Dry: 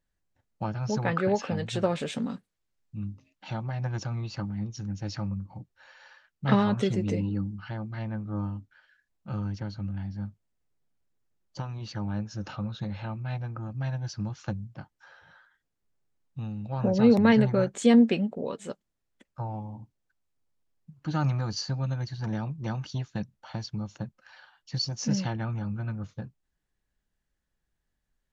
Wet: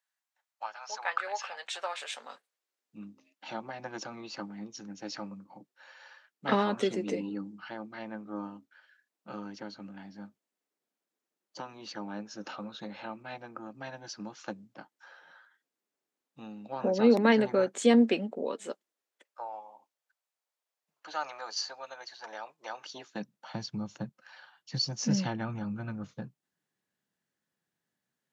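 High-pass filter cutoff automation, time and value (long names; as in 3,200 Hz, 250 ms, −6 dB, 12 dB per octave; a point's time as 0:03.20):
high-pass filter 24 dB per octave
0:02.08 790 Hz
0:02.99 250 Hz
0:18.55 250 Hz
0:19.55 550 Hz
0:22.68 550 Hz
0:23.52 140 Hz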